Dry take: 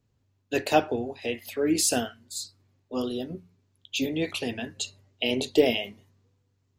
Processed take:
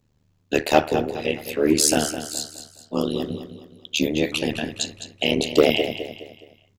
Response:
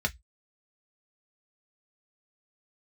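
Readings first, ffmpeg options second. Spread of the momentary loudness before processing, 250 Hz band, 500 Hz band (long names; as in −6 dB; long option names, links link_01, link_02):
13 LU, +5.5 dB, +5.5 dB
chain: -af "tremolo=f=75:d=0.974,aecho=1:1:209|418|627|836:0.282|0.11|0.0429|0.0167,aeval=exprs='0.398*sin(PI/2*1.41*val(0)/0.398)':channel_layout=same,volume=3dB"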